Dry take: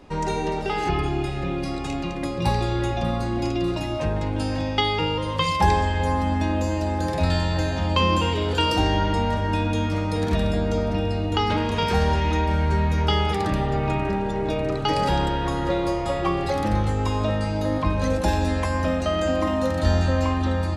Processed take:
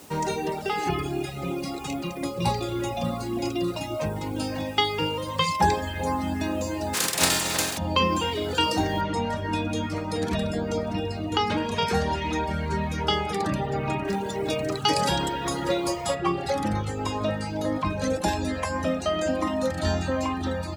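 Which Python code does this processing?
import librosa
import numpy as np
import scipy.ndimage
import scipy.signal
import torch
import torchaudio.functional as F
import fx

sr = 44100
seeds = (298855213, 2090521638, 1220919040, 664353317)

y = fx.notch(x, sr, hz=1700.0, q=7.6, at=(1.33, 4.54))
y = fx.spec_flatten(y, sr, power=0.3, at=(6.93, 7.77), fade=0.02)
y = fx.noise_floor_step(y, sr, seeds[0], at_s=9.01, before_db=-52, after_db=-67, tilt_db=0.0)
y = fx.high_shelf(y, sr, hz=3800.0, db=10.5, at=(14.07, 16.14), fade=0.02)
y = scipy.signal.sosfilt(scipy.signal.butter(2, 110.0, 'highpass', fs=sr, output='sos'), y)
y = fx.dereverb_blind(y, sr, rt60_s=0.98)
y = fx.peak_eq(y, sr, hz=7900.0, db=4.0, octaves=1.1)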